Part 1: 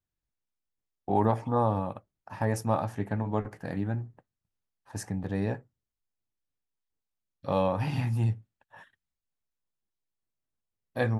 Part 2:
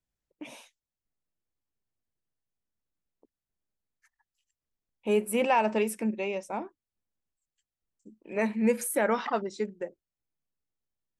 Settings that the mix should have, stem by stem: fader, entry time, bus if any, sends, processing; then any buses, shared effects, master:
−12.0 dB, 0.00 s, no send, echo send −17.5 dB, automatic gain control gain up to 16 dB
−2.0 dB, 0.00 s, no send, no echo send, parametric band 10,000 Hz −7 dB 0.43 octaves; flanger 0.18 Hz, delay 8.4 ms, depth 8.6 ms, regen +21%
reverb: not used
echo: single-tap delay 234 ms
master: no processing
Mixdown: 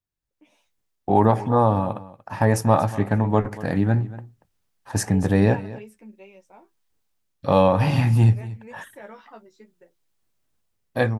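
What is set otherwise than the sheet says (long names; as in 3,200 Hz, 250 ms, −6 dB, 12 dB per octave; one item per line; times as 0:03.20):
stem 1 −12.0 dB → −2.0 dB
stem 2 −2.0 dB → −12.5 dB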